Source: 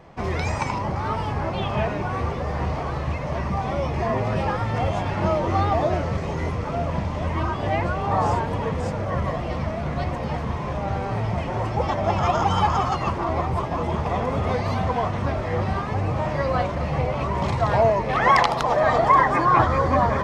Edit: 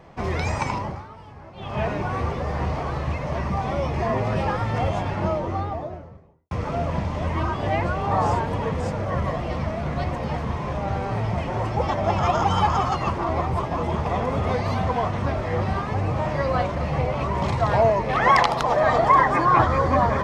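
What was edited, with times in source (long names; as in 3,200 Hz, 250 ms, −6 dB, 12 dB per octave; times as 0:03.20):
0:00.74–0:01.88: duck −17 dB, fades 0.33 s
0:04.77–0:06.51: fade out and dull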